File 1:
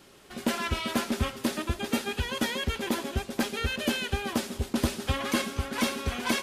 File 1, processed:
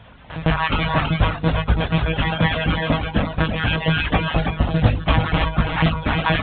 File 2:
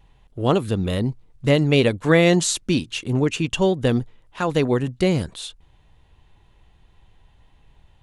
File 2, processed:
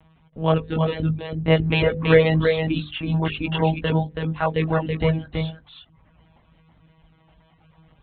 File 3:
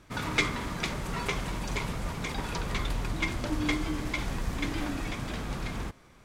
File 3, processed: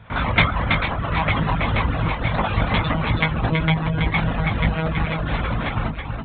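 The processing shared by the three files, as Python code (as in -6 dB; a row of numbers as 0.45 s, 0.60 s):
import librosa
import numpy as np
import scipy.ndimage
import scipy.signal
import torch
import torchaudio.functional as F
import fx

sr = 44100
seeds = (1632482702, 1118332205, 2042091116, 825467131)

y = fx.lpc_monotone(x, sr, seeds[0], pitch_hz=160.0, order=8)
y = scipy.signal.sosfilt(scipy.signal.butter(2, 40.0, 'highpass', fs=sr, output='sos'), y)
y = fx.chorus_voices(y, sr, voices=4, hz=0.49, base_ms=19, depth_ms=1.5, mix_pct=35)
y = fx.high_shelf(y, sr, hz=2800.0, db=-9.0)
y = y + 10.0 ** (-4.5 / 20.0) * np.pad(y, (int(327 * sr / 1000.0), 0))[:len(y)]
y = fx.dereverb_blind(y, sr, rt60_s=0.66)
y = fx.peak_eq(y, sr, hz=370.0, db=-9.5, octaves=0.52)
y = fx.hum_notches(y, sr, base_hz=50, count=10)
y = librosa.util.normalize(y) * 10.0 ** (-1.5 / 20.0)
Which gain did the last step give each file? 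+17.5 dB, +6.0 dB, +17.5 dB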